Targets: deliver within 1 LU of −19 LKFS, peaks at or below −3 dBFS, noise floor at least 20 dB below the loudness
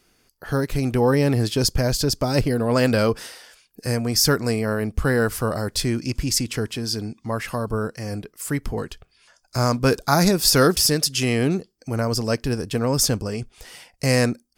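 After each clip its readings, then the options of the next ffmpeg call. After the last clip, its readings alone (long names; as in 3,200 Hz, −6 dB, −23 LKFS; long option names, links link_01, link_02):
integrated loudness −22.0 LKFS; sample peak −2.0 dBFS; target loudness −19.0 LKFS
→ -af "volume=3dB,alimiter=limit=-3dB:level=0:latency=1"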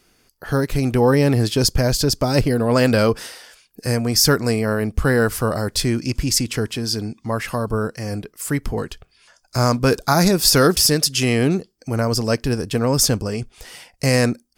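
integrated loudness −19.0 LKFS; sample peak −3.0 dBFS; background noise floor −61 dBFS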